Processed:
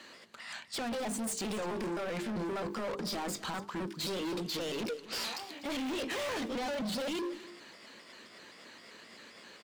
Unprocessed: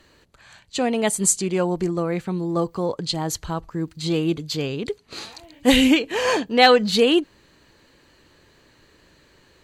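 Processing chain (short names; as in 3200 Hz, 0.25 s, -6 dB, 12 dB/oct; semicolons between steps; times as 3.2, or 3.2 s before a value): trilling pitch shifter +2.5 st, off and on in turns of 0.131 s; weighting filter A; de-esser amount 80%; bell 220 Hz +10.5 dB 0.54 oct; notches 50/100/150/200/250/300/350/400/450 Hz; in parallel at 0 dB: negative-ratio compressor -32 dBFS; on the sum: limiter -15.5 dBFS, peak gain reduction 6.5 dB; flange 1.6 Hz, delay 3.2 ms, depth 2.6 ms, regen -90%; overloaded stage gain 34 dB; on a send: echo 0.249 s -16 dB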